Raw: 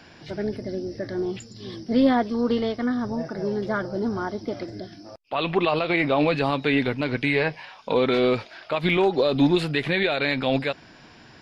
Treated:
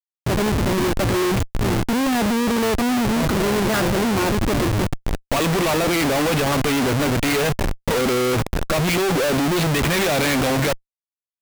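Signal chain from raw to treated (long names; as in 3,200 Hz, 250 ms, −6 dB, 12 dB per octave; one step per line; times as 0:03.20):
comparator with hysteresis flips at −34.5 dBFS
level +5.5 dB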